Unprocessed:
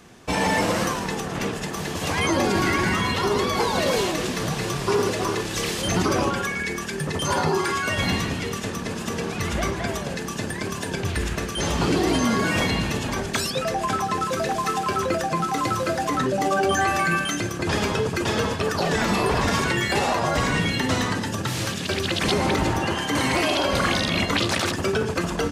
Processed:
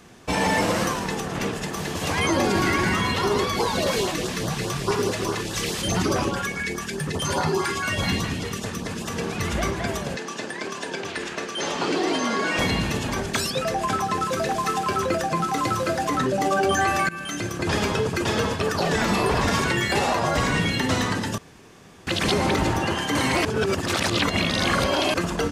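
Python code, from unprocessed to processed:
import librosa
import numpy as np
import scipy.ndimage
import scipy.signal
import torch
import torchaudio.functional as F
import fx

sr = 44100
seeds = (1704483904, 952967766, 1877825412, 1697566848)

y = fx.filter_lfo_notch(x, sr, shape='saw_up', hz=4.8, low_hz=220.0, high_hz=2900.0, q=1.4, at=(3.45, 9.16))
y = fx.bandpass_edges(y, sr, low_hz=310.0, high_hz=6800.0, at=(10.16, 12.59))
y = fx.edit(y, sr, fx.fade_in_from(start_s=17.09, length_s=0.6, curve='qsin', floor_db=-19.5),
    fx.room_tone_fill(start_s=21.38, length_s=0.69),
    fx.reverse_span(start_s=23.45, length_s=1.69), tone=tone)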